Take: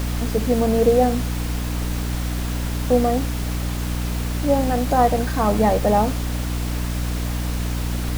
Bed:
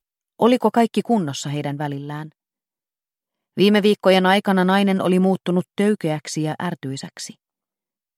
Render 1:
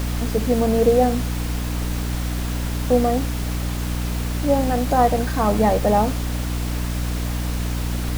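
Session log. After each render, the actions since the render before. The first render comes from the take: no audible change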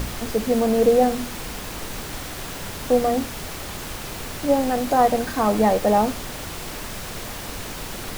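de-hum 60 Hz, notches 5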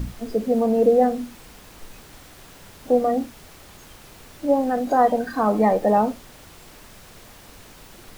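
noise print and reduce 13 dB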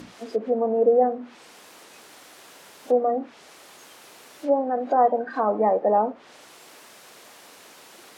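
low-pass that closes with the level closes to 1.1 kHz, closed at -18 dBFS; high-pass 360 Hz 12 dB/octave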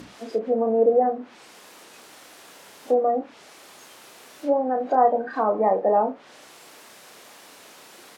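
doubling 31 ms -8 dB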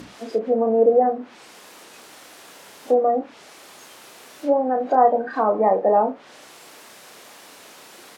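trim +2.5 dB

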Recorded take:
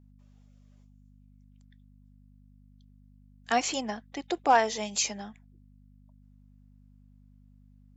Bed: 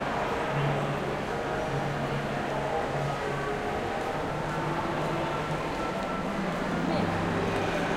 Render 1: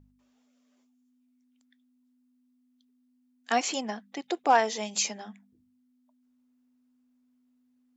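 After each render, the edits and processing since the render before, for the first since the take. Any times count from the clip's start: de-hum 50 Hz, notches 4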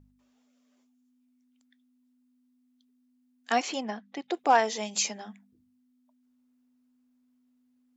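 3.62–4.34 s: distance through air 93 m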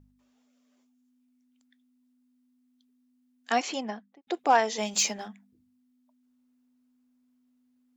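3.85–4.27 s: studio fade out; 4.78–5.28 s: waveshaping leveller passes 1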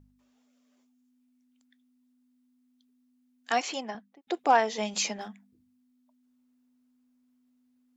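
3.51–3.95 s: high-pass 360 Hz 6 dB/octave; 4.51–5.21 s: distance through air 77 m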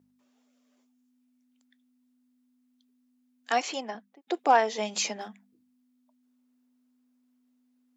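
high-pass 290 Hz 12 dB/octave; bass shelf 370 Hz +5.5 dB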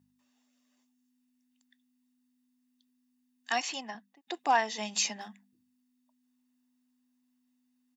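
peaking EQ 510 Hz -8.5 dB 2.4 oct; comb 1.1 ms, depth 40%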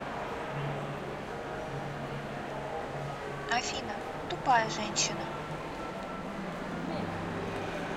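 add bed -7.5 dB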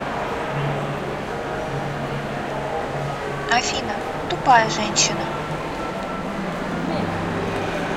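trim +11.5 dB

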